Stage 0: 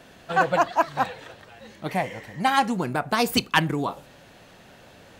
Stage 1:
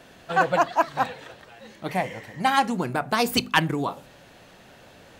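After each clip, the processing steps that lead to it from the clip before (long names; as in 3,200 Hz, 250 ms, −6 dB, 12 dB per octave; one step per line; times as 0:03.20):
mains-hum notches 50/100/150/200/250 Hz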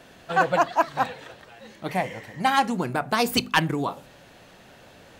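hard clipping −9.5 dBFS, distortion −27 dB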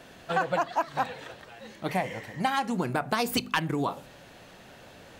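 downward compressor 6 to 1, threshold −23 dBFS, peak gain reduction 8.5 dB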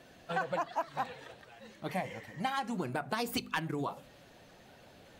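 spectral magnitudes quantised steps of 15 dB
level −6.5 dB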